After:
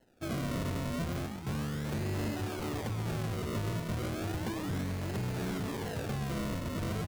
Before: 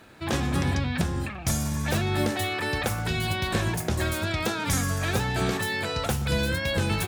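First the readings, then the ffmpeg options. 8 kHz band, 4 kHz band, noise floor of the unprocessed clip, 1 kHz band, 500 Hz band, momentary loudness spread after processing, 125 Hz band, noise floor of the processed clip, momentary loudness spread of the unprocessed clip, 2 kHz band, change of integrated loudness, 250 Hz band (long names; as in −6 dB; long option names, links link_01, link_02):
−14.0 dB, −13.5 dB, −36 dBFS, −10.0 dB, −8.0 dB, 2 LU, −7.0 dB, −40 dBFS, 2 LU, −14.5 dB, −8.5 dB, −6.0 dB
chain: -filter_complex "[0:a]highpass=frequency=92:width=0.5412,highpass=frequency=92:width=1.3066,afwtdn=0.0282,acrossover=split=440|3000[link_01][link_02][link_03];[link_02]acompressor=threshold=-44dB:ratio=6[link_04];[link_01][link_04][link_03]amix=inputs=3:normalize=0,acrusher=samples=37:mix=1:aa=0.000001:lfo=1:lforange=37:lforate=0.34,asoftclip=type=tanh:threshold=-33dB,asplit=2[link_05][link_06];[link_06]adelay=134.1,volume=-11dB,highshelf=frequency=4000:gain=-3.02[link_07];[link_05][link_07]amix=inputs=2:normalize=0,volume=1.5dB"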